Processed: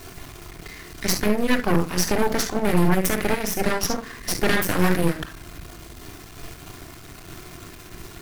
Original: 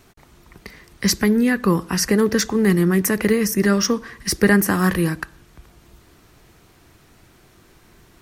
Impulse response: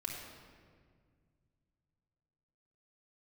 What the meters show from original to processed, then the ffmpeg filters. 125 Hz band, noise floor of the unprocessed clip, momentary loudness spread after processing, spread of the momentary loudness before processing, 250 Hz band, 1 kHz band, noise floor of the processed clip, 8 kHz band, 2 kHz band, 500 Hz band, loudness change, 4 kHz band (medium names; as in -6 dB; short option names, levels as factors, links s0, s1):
-3.5 dB, -53 dBFS, 20 LU, 7 LU, -6.0 dB, +1.0 dB, -43 dBFS, -3.0 dB, -3.0 dB, -3.5 dB, -4.0 dB, -2.5 dB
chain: -filter_complex "[0:a]aeval=exprs='val(0)+0.5*0.0335*sgn(val(0))':c=same[s0];[1:a]atrim=start_sample=2205,atrim=end_sample=3528[s1];[s0][s1]afir=irnorm=-1:irlink=0,aeval=exprs='0.562*(cos(1*acos(clip(val(0)/0.562,-1,1)))-cos(1*PI/2))+0.2*(cos(6*acos(clip(val(0)/0.562,-1,1)))-cos(6*PI/2))':c=same,volume=0.501"